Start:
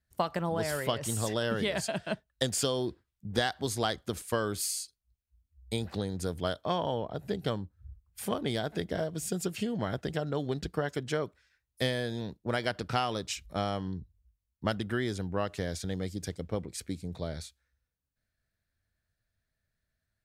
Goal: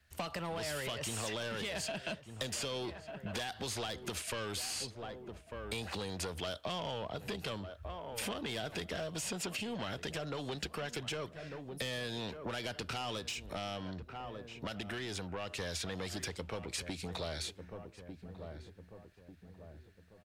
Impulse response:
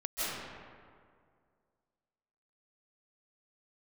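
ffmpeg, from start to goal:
-filter_complex "[0:a]asoftclip=type=tanh:threshold=-29dB,asplit=2[a][b];[b]highpass=f=720:p=1,volume=8dB,asoftclip=type=tanh:threshold=-29dB[c];[a][c]amix=inputs=2:normalize=0,lowpass=f=4.8k:p=1,volume=-6dB,equalizer=f=2.7k:t=o:w=0.47:g=6,asplit=2[d][e];[e]adelay=1195,lowpass=f=1.3k:p=1,volume=-17.5dB,asplit=2[f][g];[g]adelay=1195,lowpass=f=1.3k:p=1,volume=0.45,asplit=2[h][i];[i]adelay=1195,lowpass=f=1.3k:p=1,volume=0.45,asplit=2[j][k];[k]adelay=1195,lowpass=f=1.3k:p=1,volume=0.45[l];[d][f][h][j][l]amix=inputs=5:normalize=0,alimiter=level_in=10dB:limit=-24dB:level=0:latency=1:release=233,volume=-10dB,asettb=1/sr,asplit=3[m][n][o];[m]atrim=end=13.194[p];[n]atrim=start=13.19:end=15.6,asetpts=PTS-STARTPTS,afade=t=in:d=0.004:c=qsin,afade=t=out:st=2.406:d=0.004:c=qsin,acompressor=threshold=-48dB:ratio=1.5[q];[o]atrim=start=15.596[r];[p][q]acrossfade=d=0.004:c1=hsin:c2=qsin[s];[s][r]acrossfade=d=0.004:c1=qsin:c2=hsin,equalizer=f=77:t=o:w=0.42:g=8.5,acrossover=split=230|630|3300|7300[t][u][v][w][x];[t]acompressor=threshold=-57dB:ratio=4[y];[u]acompressor=threshold=-56dB:ratio=4[z];[v]acompressor=threshold=-54dB:ratio=4[aa];[w]acompressor=threshold=-54dB:ratio=4[ab];[x]acompressor=threshold=-59dB:ratio=4[ac];[y][z][aa][ab][ac]amix=inputs=5:normalize=0,volume=11dB" -ar 44100 -c:a libmp3lame -b:a 96k

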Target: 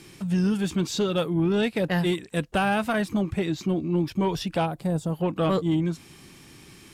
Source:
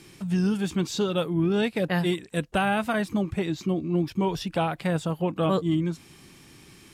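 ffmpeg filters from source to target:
-filter_complex "[0:a]asplit=3[a][b][c];[a]afade=t=out:st=4.65:d=0.02[d];[b]equalizer=f=2.2k:w=0.67:g=-15,afade=t=in:st=4.65:d=0.02,afade=t=out:st=5.12:d=0.02[e];[c]afade=t=in:st=5.12:d=0.02[f];[d][e][f]amix=inputs=3:normalize=0,asoftclip=type=tanh:threshold=-16.5dB,volume=2dB"

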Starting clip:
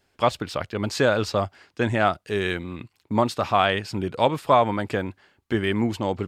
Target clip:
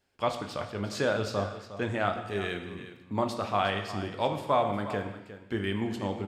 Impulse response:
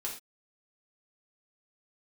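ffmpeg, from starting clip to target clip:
-filter_complex "[0:a]aecho=1:1:358:0.224,asplit=2[a][b];[1:a]atrim=start_sample=2205,asetrate=22932,aresample=44100,adelay=20[c];[b][c]afir=irnorm=-1:irlink=0,volume=-11.5dB[d];[a][d]amix=inputs=2:normalize=0,volume=-8.5dB"

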